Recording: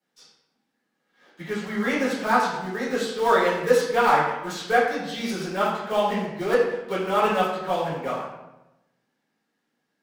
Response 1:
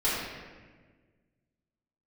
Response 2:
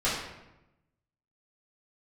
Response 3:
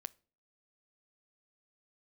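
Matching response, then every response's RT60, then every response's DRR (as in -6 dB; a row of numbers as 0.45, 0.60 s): 2; 1.5, 0.95, 0.40 s; -11.0, -11.0, 16.5 dB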